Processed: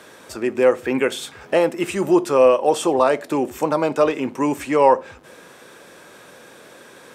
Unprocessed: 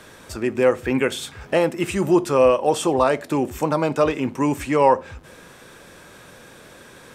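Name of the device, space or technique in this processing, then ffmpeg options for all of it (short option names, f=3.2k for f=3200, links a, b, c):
filter by subtraction: -filter_complex "[0:a]asplit=2[a][b];[b]lowpass=410,volume=-1[c];[a][c]amix=inputs=2:normalize=0"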